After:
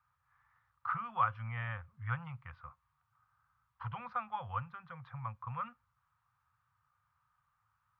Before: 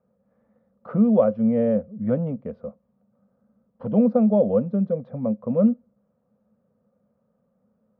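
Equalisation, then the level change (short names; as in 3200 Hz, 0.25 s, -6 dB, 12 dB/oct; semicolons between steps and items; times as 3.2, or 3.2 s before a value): inverse Chebyshev band-stop 190–640 Hz, stop band 40 dB; tone controls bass -11 dB, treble -10 dB; +8.5 dB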